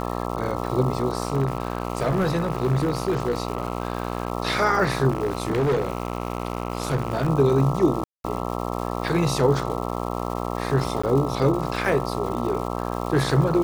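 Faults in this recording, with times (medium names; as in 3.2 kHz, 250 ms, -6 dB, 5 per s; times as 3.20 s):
buzz 60 Hz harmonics 22 -28 dBFS
crackle 410 per s -32 dBFS
1.25–4.32 s: clipped -17 dBFS
5.09–7.30 s: clipped -18 dBFS
8.04–8.24 s: dropout 202 ms
11.02–11.04 s: dropout 15 ms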